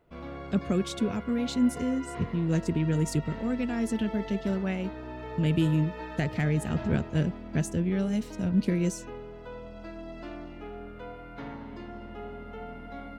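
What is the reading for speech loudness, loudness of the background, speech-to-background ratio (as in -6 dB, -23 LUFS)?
-29.0 LUFS, -41.0 LUFS, 12.0 dB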